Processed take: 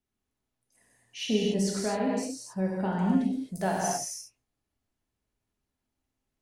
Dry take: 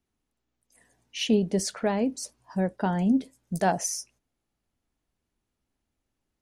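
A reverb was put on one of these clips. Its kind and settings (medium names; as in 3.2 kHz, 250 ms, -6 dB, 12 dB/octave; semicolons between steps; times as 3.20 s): gated-style reverb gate 290 ms flat, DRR -3.5 dB; trim -7 dB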